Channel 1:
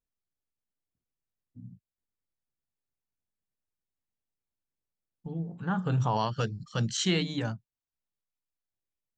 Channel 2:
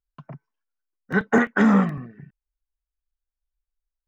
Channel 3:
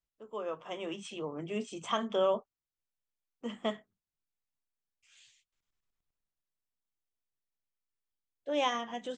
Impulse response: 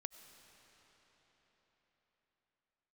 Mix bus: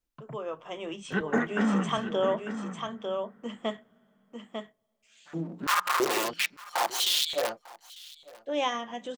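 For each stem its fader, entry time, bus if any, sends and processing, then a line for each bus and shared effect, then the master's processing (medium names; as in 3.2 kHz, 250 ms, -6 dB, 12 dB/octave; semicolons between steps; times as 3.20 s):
+2.0 dB, 0.00 s, no send, echo send -21.5 dB, comb filter that takes the minimum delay 5.7 ms; integer overflow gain 26 dB; step-sequenced high-pass 3 Hz 270–3400 Hz
-6.5 dB, 0.00 s, send -4 dB, echo send -13 dB, auto duck -11 dB, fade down 1.95 s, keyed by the third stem
+1.0 dB, 0.00 s, send -18.5 dB, echo send -5 dB, none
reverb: on, RT60 4.9 s, pre-delay 55 ms
echo: delay 898 ms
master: none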